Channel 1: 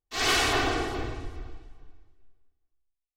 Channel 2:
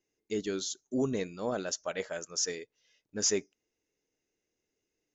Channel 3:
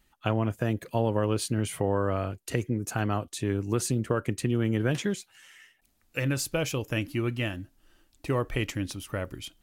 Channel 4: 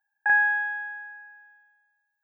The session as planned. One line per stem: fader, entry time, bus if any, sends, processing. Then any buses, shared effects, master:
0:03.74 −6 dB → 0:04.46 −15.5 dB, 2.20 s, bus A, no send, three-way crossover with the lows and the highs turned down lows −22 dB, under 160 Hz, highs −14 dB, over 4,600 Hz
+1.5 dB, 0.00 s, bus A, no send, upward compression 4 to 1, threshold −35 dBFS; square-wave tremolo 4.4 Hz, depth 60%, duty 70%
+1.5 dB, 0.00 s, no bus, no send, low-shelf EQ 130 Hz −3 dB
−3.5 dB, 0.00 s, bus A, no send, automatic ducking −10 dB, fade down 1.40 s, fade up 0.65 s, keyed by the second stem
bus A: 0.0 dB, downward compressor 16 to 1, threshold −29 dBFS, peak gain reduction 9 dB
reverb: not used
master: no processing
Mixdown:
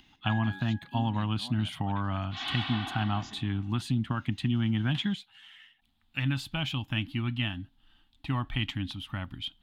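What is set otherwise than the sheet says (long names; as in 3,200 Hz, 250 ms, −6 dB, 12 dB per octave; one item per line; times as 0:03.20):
stem 2 +1.5 dB → −7.5 dB
stem 4 −3.5 dB → −12.0 dB
master: extra drawn EQ curve 260 Hz 0 dB, 470 Hz −29 dB, 790 Hz 0 dB, 1,200 Hz −4 dB, 2,400 Hz −4 dB, 3,400 Hz +7 dB, 5,900 Hz −18 dB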